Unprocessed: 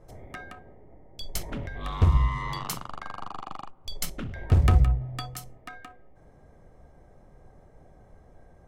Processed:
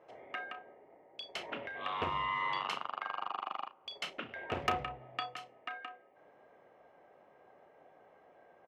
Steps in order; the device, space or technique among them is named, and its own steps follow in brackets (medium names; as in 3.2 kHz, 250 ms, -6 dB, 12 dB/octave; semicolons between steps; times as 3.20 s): megaphone (band-pass 490–2500 Hz; peaking EQ 2.8 kHz +9.5 dB 0.49 oct; hard clipper -21.5 dBFS, distortion -22 dB; doubling 34 ms -12 dB)